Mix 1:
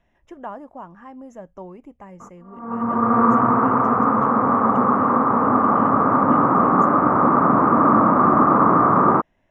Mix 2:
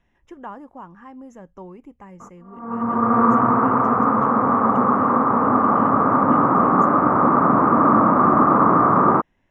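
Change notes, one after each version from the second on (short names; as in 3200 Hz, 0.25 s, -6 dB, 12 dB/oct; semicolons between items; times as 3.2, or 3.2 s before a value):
speech: add bell 640 Hz -9.5 dB 0.33 oct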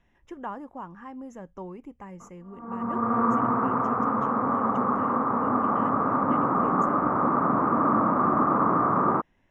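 background -7.5 dB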